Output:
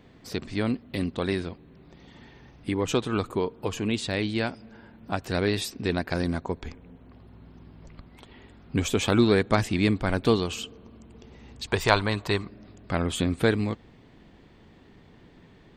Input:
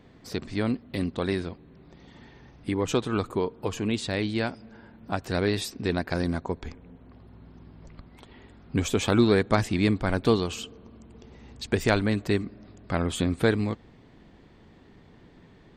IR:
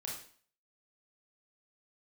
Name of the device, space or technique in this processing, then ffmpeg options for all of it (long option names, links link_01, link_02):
presence and air boost: -filter_complex "[0:a]asettb=1/sr,asplit=3[link_01][link_02][link_03];[link_01]atrim=end=11.674[link_04];[link_02]atrim=start=11.67:end=12.49,asetpts=PTS-STARTPTS,afade=type=in:duration=0.004:curve=qsin,afade=type=out:start_time=0.816:duration=0.004:curve=qsin,equalizer=frequency=250:width_type=o:width=0.67:gain=-9,equalizer=frequency=1000:width_type=o:width=0.67:gain=11,equalizer=frequency=4000:width_type=o:width=0.67:gain=5[link_05];[link_03]atrim=start=12.486[link_06];[link_04][link_05]acrossfade=duration=0.004:curve1=hsin:curve2=qsin[link_07];[link_07][link_06]acrossfade=duration=0.004:curve1=qsin:curve2=hsin,equalizer=frequency=2800:width_type=o:width=0.77:gain=2.5,highshelf=frequency=11000:gain=3"